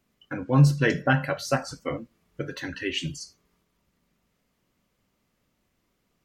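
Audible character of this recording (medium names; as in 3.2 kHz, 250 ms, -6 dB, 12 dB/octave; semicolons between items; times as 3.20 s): noise floor -74 dBFS; spectral tilt -5.5 dB/octave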